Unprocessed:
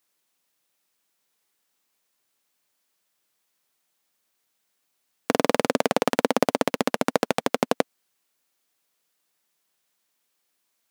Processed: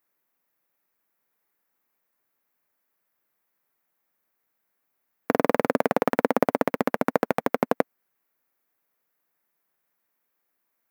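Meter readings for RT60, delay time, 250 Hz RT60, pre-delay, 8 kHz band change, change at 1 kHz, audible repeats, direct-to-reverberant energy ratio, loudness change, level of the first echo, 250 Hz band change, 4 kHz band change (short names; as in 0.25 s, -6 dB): none, none, none, none, -11.5 dB, 0.0 dB, none, none, -0.5 dB, none, 0.0 dB, -12.0 dB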